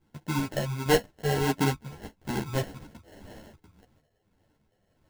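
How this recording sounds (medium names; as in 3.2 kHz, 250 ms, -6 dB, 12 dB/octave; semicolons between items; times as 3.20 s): phasing stages 8, 1.4 Hz, lowest notch 290–1100 Hz; random-step tremolo; aliases and images of a low sample rate 1.2 kHz, jitter 0%; a shimmering, thickened sound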